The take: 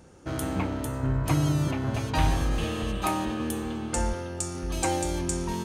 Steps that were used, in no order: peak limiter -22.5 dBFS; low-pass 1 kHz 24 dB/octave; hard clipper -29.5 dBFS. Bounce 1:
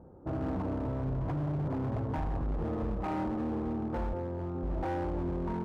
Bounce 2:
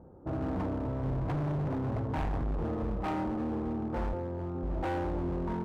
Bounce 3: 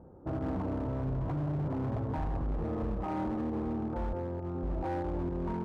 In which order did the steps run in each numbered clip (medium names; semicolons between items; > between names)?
low-pass > peak limiter > hard clipper; low-pass > hard clipper > peak limiter; peak limiter > low-pass > hard clipper